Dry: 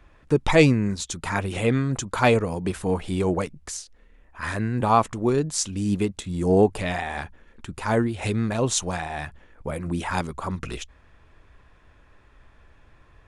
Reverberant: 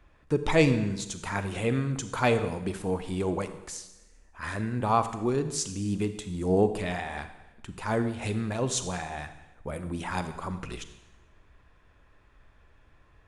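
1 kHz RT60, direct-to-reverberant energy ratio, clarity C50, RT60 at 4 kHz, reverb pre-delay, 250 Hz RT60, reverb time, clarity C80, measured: 1.0 s, 10.0 dB, 11.0 dB, 0.95 s, 32 ms, 1.1 s, 1.0 s, 13.0 dB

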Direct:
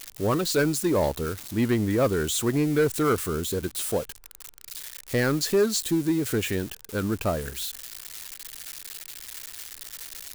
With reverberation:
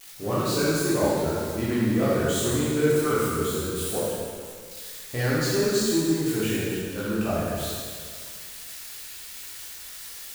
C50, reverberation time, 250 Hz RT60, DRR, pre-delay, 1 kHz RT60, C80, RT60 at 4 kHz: -3.5 dB, 2.0 s, 1.9 s, -9.0 dB, 7 ms, 2.0 s, -1.0 dB, 1.9 s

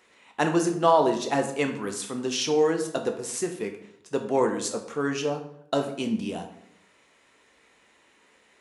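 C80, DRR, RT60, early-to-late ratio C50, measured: 12.0 dB, 4.5 dB, 0.70 s, 9.0 dB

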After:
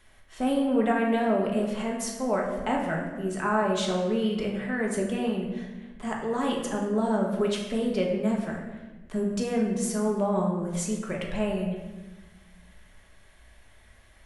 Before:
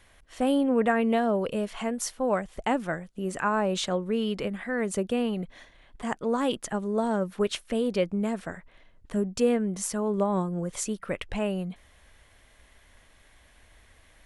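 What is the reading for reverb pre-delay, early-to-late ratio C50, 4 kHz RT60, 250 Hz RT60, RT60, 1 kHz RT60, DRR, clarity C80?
3 ms, 3.5 dB, 0.80 s, 1.9 s, 1.2 s, 1.0 s, -1.5 dB, 5.5 dB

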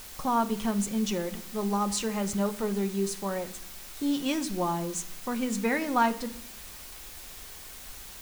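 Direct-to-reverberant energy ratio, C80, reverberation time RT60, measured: 7.0 dB, 18.0 dB, 0.65 s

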